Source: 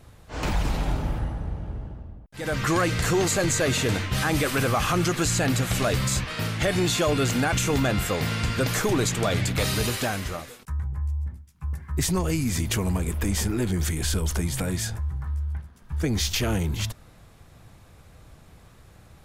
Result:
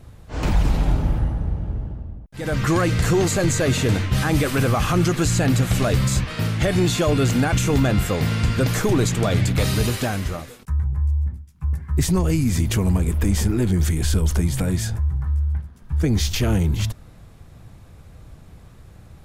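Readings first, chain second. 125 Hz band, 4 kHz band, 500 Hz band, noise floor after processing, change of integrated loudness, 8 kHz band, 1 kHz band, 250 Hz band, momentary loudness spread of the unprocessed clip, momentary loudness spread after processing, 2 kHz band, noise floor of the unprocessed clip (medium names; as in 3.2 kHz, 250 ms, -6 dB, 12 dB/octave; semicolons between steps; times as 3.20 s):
+7.0 dB, 0.0 dB, +3.0 dB, -46 dBFS, +4.5 dB, 0.0 dB, +1.0 dB, +5.5 dB, 12 LU, 9 LU, +0.5 dB, -52 dBFS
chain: bass shelf 380 Hz +7.5 dB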